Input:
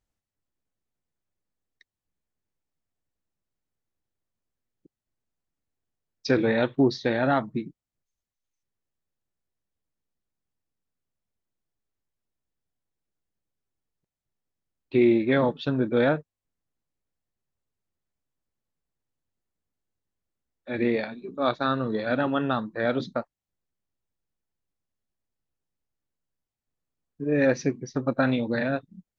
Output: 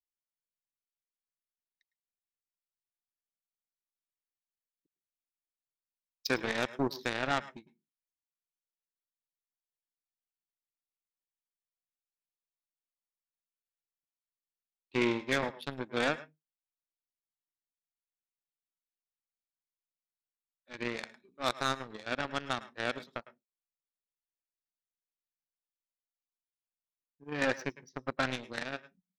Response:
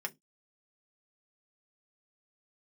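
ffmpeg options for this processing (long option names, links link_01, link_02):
-filter_complex "[0:a]tiltshelf=frequency=1400:gain=-6,aeval=exprs='0.299*(cos(1*acos(clip(val(0)/0.299,-1,1)))-cos(1*PI/2))+0.0376*(cos(7*acos(clip(val(0)/0.299,-1,1)))-cos(7*PI/2))':channel_layout=same,asplit=2[link_01][link_02];[1:a]atrim=start_sample=2205,adelay=105[link_03];[link_02][link_03]afir=irnorm=-1:irlink=0,volume=-17.5dB[link_04];[link_01][link_04]amix=inputs=2:normalize=0,volume=-3.5dB"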